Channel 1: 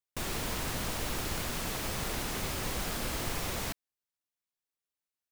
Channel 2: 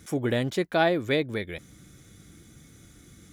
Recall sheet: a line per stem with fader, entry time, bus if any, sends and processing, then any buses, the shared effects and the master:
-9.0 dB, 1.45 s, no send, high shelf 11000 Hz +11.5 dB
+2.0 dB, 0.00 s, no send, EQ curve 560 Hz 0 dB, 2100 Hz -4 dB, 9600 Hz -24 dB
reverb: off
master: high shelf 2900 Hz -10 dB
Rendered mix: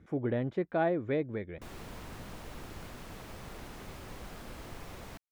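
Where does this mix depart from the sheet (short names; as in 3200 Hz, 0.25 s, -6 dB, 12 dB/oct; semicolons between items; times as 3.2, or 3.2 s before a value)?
stem 1: missing high shelf 11000 Hz +11.5 dB; stem 2 +2.0 dB -> -5.0 dB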